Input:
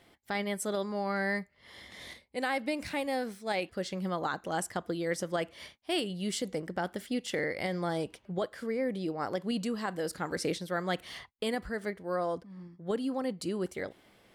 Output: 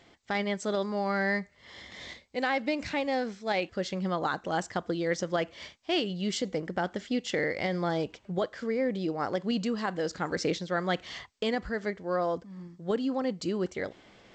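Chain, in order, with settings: reverse; upward compressor, threshold -53 dBFS; reverse; trim +3 dB; G.722 64 kbps 16 kHz

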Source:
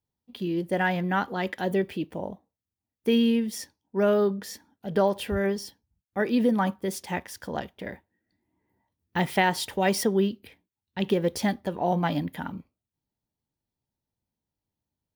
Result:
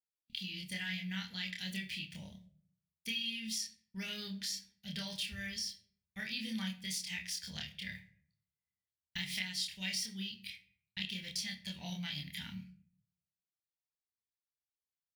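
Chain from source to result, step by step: pre-emphasis filter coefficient 0.9; gate with hold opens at -59 dBFS; FFT filter 180 Hz 0 dB, 320 Hz -26 dB, 1.2 kHz -22 dB, 2.1 kHz 0 dB, 4.6 kHz +2 dB, 15 kHz -21 dB; compression 4:1, threshold -52 dBFS, peak gain reduction 16 dB; doubling 27 ms -2 dB; on a send: reverberation RT60 0.55 s, pre-delay 3 ms, DRR 8 dB; on the sum: trim +12 dB

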